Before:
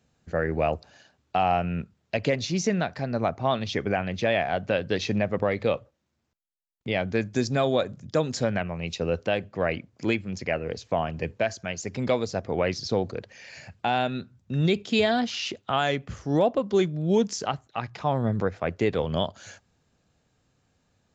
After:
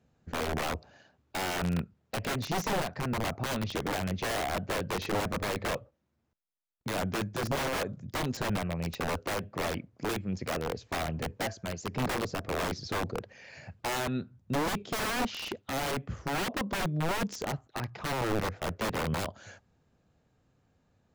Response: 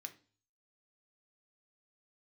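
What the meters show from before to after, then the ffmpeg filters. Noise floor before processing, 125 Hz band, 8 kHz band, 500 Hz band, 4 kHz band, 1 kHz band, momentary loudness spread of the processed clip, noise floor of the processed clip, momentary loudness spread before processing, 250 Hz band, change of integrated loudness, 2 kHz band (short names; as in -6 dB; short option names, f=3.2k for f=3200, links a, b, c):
-73 dBFS, -5.0 dB, n/a, -9.0 dB, -3.5 dB, -5.0 dB, 6 LU, -73 dBFS, 8 LU, -6.5 dB, -6.0 dB, -3.5 dB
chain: -af "aeval=exprs='(mod(13.3*val(0)+1,2)-1)/13.3':c=same,highshelf=f=2.3k:g=-10.5"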